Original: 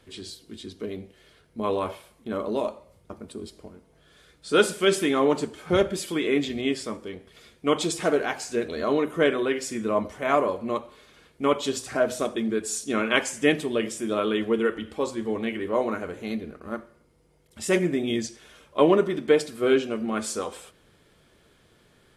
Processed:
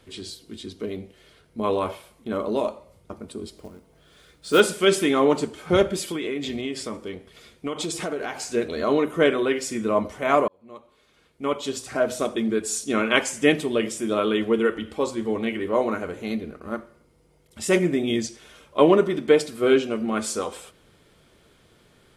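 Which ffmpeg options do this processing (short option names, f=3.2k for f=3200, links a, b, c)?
-filter_complex "[0:a]asettb=1/sr,asplit=3[a][b][c];[a]atrim=end=3.574[d];[b]atrim=start=3.57:end=4.6,asetpts=PTS-STARTPTS,afade=t=in:d=0.004:c=qsin,afade=t=out:st=1.026:d=0.004:c=qsin,acrusher=bits=5:mode=log:mix=0:aa=0.000001[e];[c]atrim=start=4.596[f];[d][e]acrossfade=d=0.004:c1=hsin:c2=qsin[g];[g][f]acrossfade=d=0.004:c1=qsin:c2=hsin,asettb=1/sr,asplit=3[h][i][j];[h]atrim=end=6.114[k];[i]atrim=start=6.11:end=8.51,asetpts=PTS-STARTPTS,afade=t=in:d=0.004:c=qsin,afade=t=out:st=2.396:d=0.004:c=qsin,acompressor=threshold=-27dB:ratio=6:attack=3.2:release=140:knee=1:detection=peak[l];[j]atrim=start=8.506[m];[k][l]acrossfade=d=0.004:c1=hsin:c2=qsin[n];[n][m]acrossfade=d=0.004:c1=qsin:c2=hsin,asplit=2[o][p];[o]atrim=end=10.48,asetpts=PTS-STARTPTS,afade=t=out:st=10.476:d=0.004:c=hsin[q];[p]atrim=start=10.48,asetpts=PTS-STARTPTS,afade=t=in:d=1.92[r];[q][r]concat=n=2:v=0:a=1,bandreject=f=1.7k:w=19,volume=2.5dB"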